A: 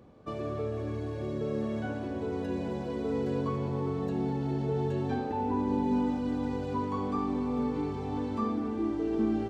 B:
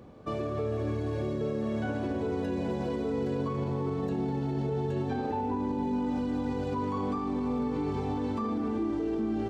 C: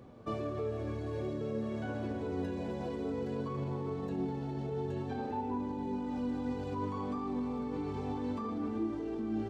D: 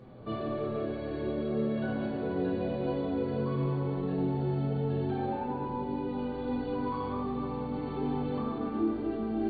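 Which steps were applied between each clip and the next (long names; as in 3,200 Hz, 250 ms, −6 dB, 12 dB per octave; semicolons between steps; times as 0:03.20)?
brickwall limiter −28.5 dBFS, peak gain reduction 10 dB; level +5 dB
in parallel at −1.5 dB: speech leveller; on the sum: flanger 0.55 Hz, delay 7.5 ms, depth 5.3 ms, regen +67%; level −6.5 dB
linear-phase brick-wall low-pass 4,700 Hz; convolution reverb RT60 1.7 s, pre-delay 5 ms, DRR −3 dB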